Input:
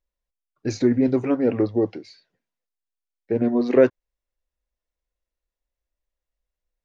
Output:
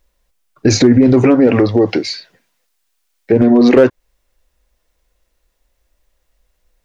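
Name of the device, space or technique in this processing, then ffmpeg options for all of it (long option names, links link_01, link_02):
loud club master: -filter_complex "[0:a]acompressor=threshold=-21dB:ratio=2,asoftclip=type=hard:threshold=-14.5dB,alimiter=level_in=22.5dB:limit=-1dB:release=50:level=0:latency=1,asettb=1/sr,asplit=3[link_01][link_02][link_03];[link_01]atrim=end=1.474[link_04];[link_02]atrim=start=1.47:end=3.32,asetpts=PTS-STARTPTS,afade=type=in:duration=0.004:curve=qsin,afade=type=out:start_time=1.846:duration=0.004:curve=qsin,tiltshelf=frequency=770:gain=-3.5[link_05];[link_03]atrim=start=3.316[link_06];[link_04][link_05]acrossfade=duration=0.004:curve1=hsin:curve2=qsin[link_07];[link_07][link_06]acrossfade=duration=0.004:curve1=qsin:curve2=hsin,volume=-1dB"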